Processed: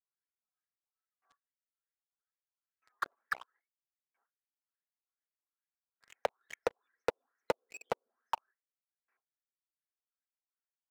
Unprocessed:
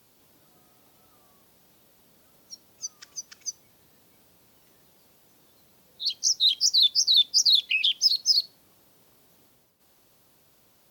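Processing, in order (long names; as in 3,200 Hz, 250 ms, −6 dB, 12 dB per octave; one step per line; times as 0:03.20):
auto-filter low-pass saw up 2.4 Hz 860–3,800 Hz
noise gate with hold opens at −49 dBFS
linear-phase brick-wall high-pass 220 Hz
reverb reduction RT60 1.1 s
Butterworth band-reject 4,600 Hz, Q 0.58
high shelf with overshoot 2,200 Hz −10 dB, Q 3
notch comb filter 300 Hz
envelope filter 480–3,000 Hz, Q 4.4, down, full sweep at −46 dBFS
leveller curve on the samples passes 5
level +8.5 dB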